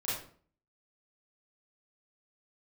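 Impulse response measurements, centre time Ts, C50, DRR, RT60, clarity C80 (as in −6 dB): 54 ms, 1.0 dB, −10.5 dB, 0.50 s, 7.0 dB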